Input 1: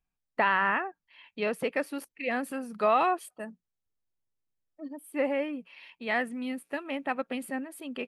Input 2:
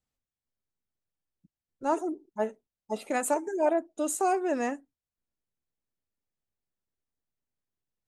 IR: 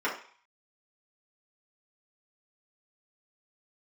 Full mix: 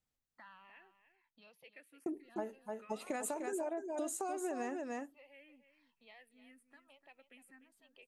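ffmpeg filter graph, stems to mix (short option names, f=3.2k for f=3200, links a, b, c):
-filter_complex "[0:a]acrossover=split=230|1500[a][b][c];[a]acompressor=threshold=-55dB:ratio=4[d];[b]acompressor=threshold=-44dB:ratio=4[e];[c]acompressor=threshold=-32dB:ratio=4[f];[d][e][f]amix=inputs=3:normalize=0,asplit=2[g][h];[h]afreqshift=-1.1[i];[g][i]amix=inputs=2:normalize=1,volume=-19dB,asplit=2[j][k];[k]volume=-12dB[l];[1:a]alimiter=limit=-21.5dB:level=0:latency=1:release=141,volume=-2dB,asplit=3[m][n][o];[m]atrim=end=1.15,asetpts=PTS-STARTPTS,afade=t=out:st=1.146:d=0.004:c=hsin[p];[n]atrim=start=1.15:end=2.06,asetpts=PTS-STARTPTS,volume=0[q];[o]atrim=start=2.06,asetpts=PTS-STARTPTS,afade=t=in:d=0.004:c=hsin[r];[p][q][r]concat=n=3:v=0:a=1,asplit=2[s][t];[t]volume=-7.5dB[u];[l][u]amix=inputs=2:normalize=0,aecho=0:1:299:1[v];[j][s][v]amix=inputs=3:normalize=0,acompressor=threshold=-35dB:ratio=10"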